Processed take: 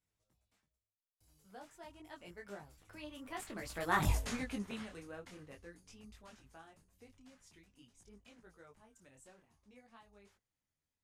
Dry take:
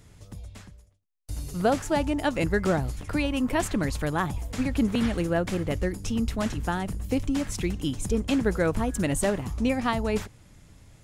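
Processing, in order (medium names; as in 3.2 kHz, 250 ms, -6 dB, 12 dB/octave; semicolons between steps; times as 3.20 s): Doppler pass-by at 4.10 s, 22 m/s, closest 1.1 m; bass shelf 350 Hz -11 dB; detune thickener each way 17 cents; trim +12 dB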